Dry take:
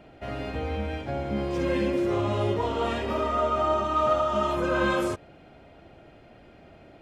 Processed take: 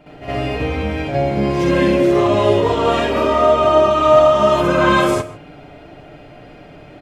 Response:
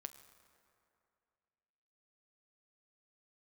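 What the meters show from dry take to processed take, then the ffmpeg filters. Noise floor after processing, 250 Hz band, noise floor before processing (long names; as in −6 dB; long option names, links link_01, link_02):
−41 dBFS, +11.0 dB, −52 dBFS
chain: -filter_complex "[0:a]aecho=1:1:6.8:0.54,asplit=2[link_01][link_02];[1:a]atrim=start_sample=2205,afade=type=out:start_time=0.21:duration=0.01,atrim=end_sample=9702,adelay=63[link_03];[link_02][link_03]afir=irnorm=-1:irlink=0,volume=13.5dB[link_04];[link_01][link_04]amix=inputs=2:normalize=0,volume=2dB"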